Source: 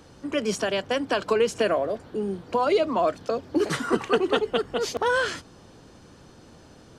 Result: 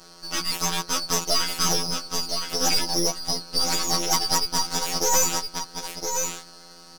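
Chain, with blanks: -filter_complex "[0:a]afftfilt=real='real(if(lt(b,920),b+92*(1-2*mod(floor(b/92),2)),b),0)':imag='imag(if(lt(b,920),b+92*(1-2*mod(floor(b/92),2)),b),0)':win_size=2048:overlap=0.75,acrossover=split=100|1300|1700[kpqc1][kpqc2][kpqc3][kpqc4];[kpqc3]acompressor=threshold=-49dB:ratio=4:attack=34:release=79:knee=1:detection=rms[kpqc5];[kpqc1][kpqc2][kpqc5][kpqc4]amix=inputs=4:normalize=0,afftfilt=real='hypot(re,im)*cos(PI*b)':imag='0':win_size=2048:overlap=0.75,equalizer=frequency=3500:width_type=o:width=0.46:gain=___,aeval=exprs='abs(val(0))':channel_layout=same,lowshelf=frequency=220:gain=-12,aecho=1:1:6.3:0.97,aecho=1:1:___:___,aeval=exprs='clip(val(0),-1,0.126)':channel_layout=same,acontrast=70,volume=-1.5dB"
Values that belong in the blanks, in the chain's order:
6.5, 1014, 0.447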